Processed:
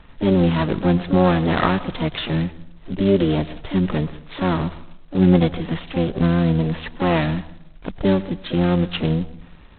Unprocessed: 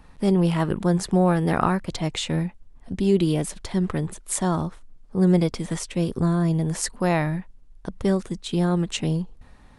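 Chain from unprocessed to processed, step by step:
notch filter 800 Hz, Q 13
pitch-shifted copies added −12 semitones −11 dB, +7 semitones −8 dB
convolution reverb RT60 0.85 s, pre-delay 98 ms, DRR 17.5 dB
level +2.5 dB
G.726 16 kbit/s 8,000 Hz

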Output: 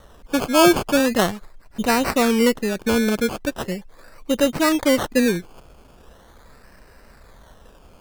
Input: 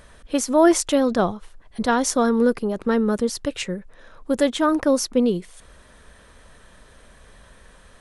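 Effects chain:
sample-and-hold swept by an LFO 18×, swing 60% 0.4 Hz
tape wow and flutter 28 cents
level +1 dB

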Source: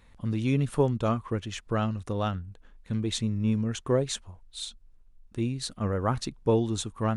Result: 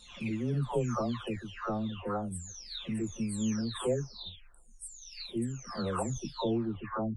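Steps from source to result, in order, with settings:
every frequency bin delayed by itself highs early, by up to 802 ms
in parallel at −1 dB: brickwall limiter −23 dBFS, peak gain reduction 9 dB
on the sum: level −7.5 dB

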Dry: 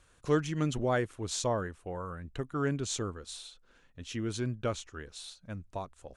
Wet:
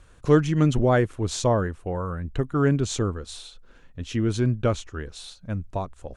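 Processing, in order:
spectral tilt −1.5 dB per octave
level +7.5 dB

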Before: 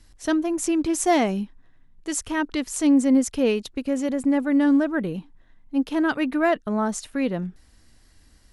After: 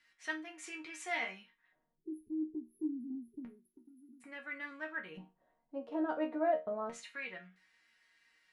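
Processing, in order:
time-frequency box erased 0:01.95–0:04.21, 430–9,900 Hz
in parallel at +3 dB: downward compressor, threshold −28 dBFS, peak gain reduction 13 dB
on the sum: auto-filter band-pass square 0.29 Hz 610–2,100 Hz
resonators tuned to a chord D#3 minor, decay 0.25 s
level +7 dB

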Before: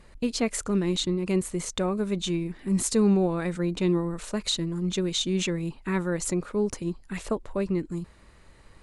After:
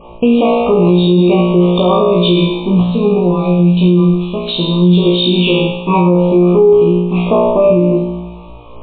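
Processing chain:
Chebyshev band-stop filter 1,200–2,400 Hz, order 4
parametric band 720 Hz +10.5 dB 2.7 octaves, from 0:02.85 −4.5 dB, from 0:04.48 +7 dB
tuned comb filter 59 Hz, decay 0.91 s, harmonics all, mix 100%
convolution reverb RT60 0.50 s, pre-delay 63 ms, DRR 12 dB
boost into a limiter +31 dB
level −1 dB
MP3 16 kbit/s 8,000 Hz

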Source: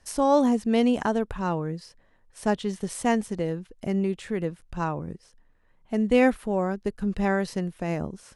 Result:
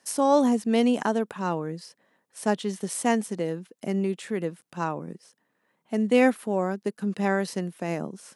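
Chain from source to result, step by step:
high-pass filter 170 Hz 24 dB per octave
high-shelf EQ 8,000 Hz +8 dB

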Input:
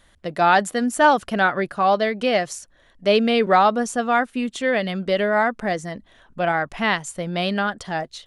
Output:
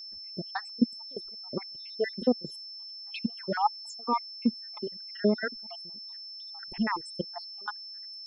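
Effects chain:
time-frequency cells dropped at random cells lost 75%
gate pattern ".xxxxx.x..x..x" 129 BPM −24 dB
hollow resonant body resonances 230/360/880 Hz, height 13 dB, ringing for 30 ms
surface crackle 16 per second −47 dBFS
all-pass phaser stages 6, 1.4 Hz, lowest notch 170–3,700 Hz
steady tone 5,300 Hz −32 dBFS
level −8.5 dB

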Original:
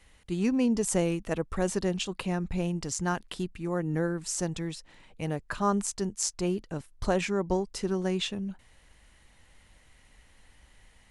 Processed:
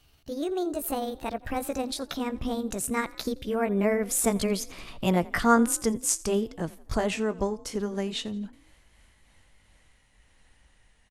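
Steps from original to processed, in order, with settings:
pitch glide at a constant tempo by +6 semitones ending unshifted
source passing by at 0:04.88, 13 m/s, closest 11 metres
echo with shifted repeats 85 ms, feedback 44%, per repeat +36 Hz, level −22 dB
in parallel at +0.5 dB: downward compressor, threshold −43 dBFS, peak gain reduction 18.5 dB
on the sum: level +7.5 dB

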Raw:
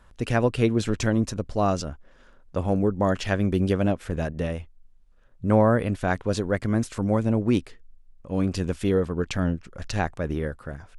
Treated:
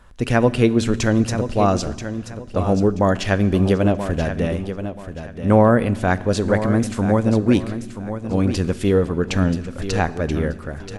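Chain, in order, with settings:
repeating echo 981 ms, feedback 27%, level −10.5 dB
on a send at −15.5 dB: convolution reverb RT60 1.3 s, pre-delay 4 ms
on the sum: level +5.5 dB

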